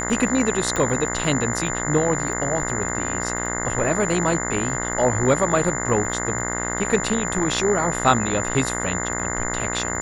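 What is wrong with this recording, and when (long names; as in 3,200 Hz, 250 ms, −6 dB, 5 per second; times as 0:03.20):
mains buzz 60 Hz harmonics 35 −28 dBFS
surface crackle 14 per second −30 dBFS
whistle 7,100 Hz −28 dBFS
0:00.76: click −10 dBFS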